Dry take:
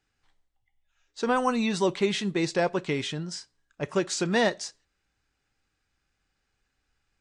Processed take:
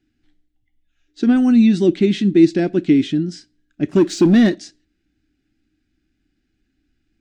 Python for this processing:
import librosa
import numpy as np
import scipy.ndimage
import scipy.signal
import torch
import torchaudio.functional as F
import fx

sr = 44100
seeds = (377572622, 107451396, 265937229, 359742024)

y = fx.curve_eq(x, sr, hz=(150.0, 310.0, 480.0, 720.0, 1000.0, 1500.0, 3500.0, 8500.0), db=(0, 14, -13, -9, -25, -8, -6, -13))
y = fx.leveller(y, sr, passes=1, at=(3.89, 4.55))
y = y * librosa.db_to_amplitude(8.0)